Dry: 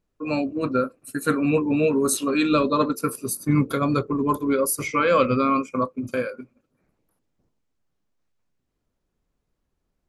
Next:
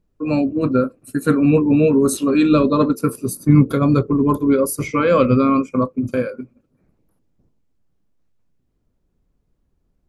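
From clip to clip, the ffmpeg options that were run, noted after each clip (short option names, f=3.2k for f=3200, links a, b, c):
-af "lowshelf=f=490:g=11.5,volume=-1dB"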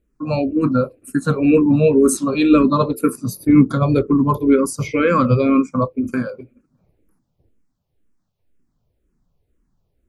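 -filter_complex "[0:a]asplit=2[a][b];[b]afreqshift=-2[c];[a][c]amix=inputs=2:normalize=1,volume=3.5dB"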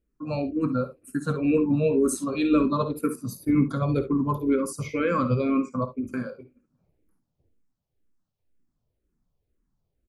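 -af "aecho=1:1:56|69:0.211|0.168,volume=-9dB"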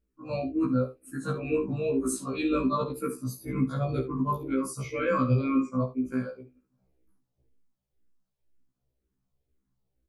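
-af "afftfilt=real='re*1.73*eq(mod(b,3),0)':imag='im*1.73*eq(mod(b,3),0)':win_size=2048:overlap=0.75"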